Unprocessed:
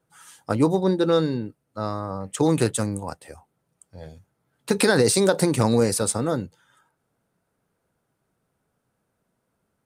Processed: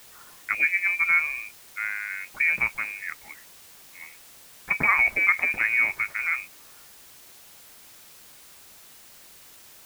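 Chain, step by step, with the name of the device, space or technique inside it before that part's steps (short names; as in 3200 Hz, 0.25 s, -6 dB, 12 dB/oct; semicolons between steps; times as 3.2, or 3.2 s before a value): scrambled radio voice (BPF 360–3100 Hz; inverted band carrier 2700 Hz; white noise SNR 21 dB)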